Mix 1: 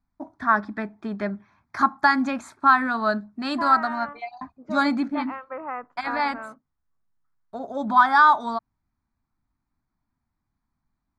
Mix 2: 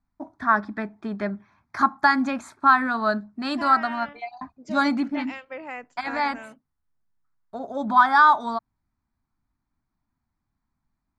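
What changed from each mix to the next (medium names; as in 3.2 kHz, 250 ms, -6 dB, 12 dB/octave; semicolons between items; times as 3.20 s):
second voice: remove resonant low-pass 1.2 kHz, resonance Q 4.9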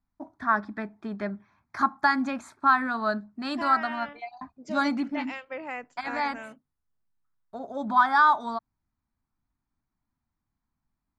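first voice -4.0 dB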